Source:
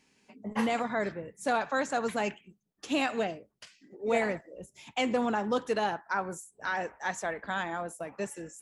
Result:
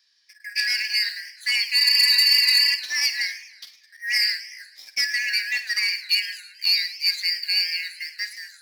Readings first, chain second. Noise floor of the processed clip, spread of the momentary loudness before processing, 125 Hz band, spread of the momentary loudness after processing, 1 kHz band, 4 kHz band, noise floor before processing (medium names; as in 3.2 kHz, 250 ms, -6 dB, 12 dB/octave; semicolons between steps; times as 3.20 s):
-57 dBFS, 11 LU, under -25 dB, 16 LU, under -15 dB, +25.0 dB, -74 dBFS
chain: four frequency bands reordered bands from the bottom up 3142; high-pass 110 Hz 12 dB/octave; resonant high shelf 6 kHz -10 dB, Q 3; spectral replace 1.83–2.72 s, 1–10 kHz before; waveshaping leveller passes 1; vibrato 7.3 Hz 24 cents; pre-emphasis filter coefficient 0.97; flutter echo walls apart 8.8 m, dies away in 0.22 s; modulated delay 108 ms, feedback 56%, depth 214 cents, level -16 dB; trim +8.5 dB